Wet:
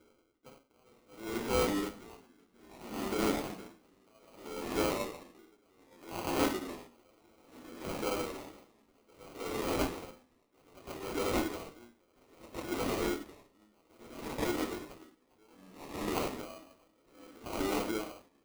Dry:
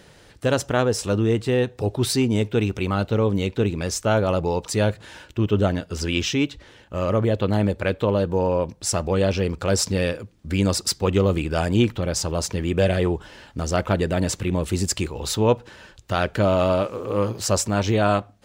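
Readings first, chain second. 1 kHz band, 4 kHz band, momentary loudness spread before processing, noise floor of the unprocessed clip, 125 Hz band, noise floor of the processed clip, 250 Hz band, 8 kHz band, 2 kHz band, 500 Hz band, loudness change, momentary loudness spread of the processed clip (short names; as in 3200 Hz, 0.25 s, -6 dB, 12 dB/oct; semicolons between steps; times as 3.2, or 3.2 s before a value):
-11.5 dB, -14.0 dB, 5 LU, -51 dBFS, -25.5 dB, -70 dBFS, -14.5 dB, -17.0 dB, -12.5 dB, -16.0 dB, -13.0 dB, 20 LU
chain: Wiener smoothing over 41 samples; limiter -15.5 dBFS, peak gain reduction 9 dB; bell 450 Hz -14.5 dB 2.7 oct; notch 600 Hz, Q 19; on a send: delay with a stepping band-pass 0.326 s, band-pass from 1200 Hz, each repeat 0.7 oct, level -6.5 dB; on the sum: shoebox room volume 41 m³, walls mixed, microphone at 0.81 m; FFT band-pass 220–5400 Hz; sample-rate reducer 1800 Hz, jitter 0%; echoes that change speed 0.343 s, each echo -2 st, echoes 2; dB-linear tremolo 0.62 Hz, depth 35 dB; gain +1 dB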